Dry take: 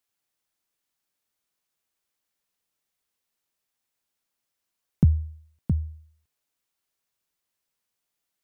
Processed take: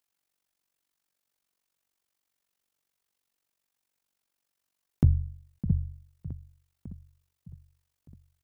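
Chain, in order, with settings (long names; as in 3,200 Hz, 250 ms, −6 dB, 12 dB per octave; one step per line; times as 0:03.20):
repeating echo 609 ms, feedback 56%, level −15 dB
amplitude modulation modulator 47 Hz, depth 80%
in parallel at −7 dB: soft clipping −20.5 dBFS, distortion −10 dB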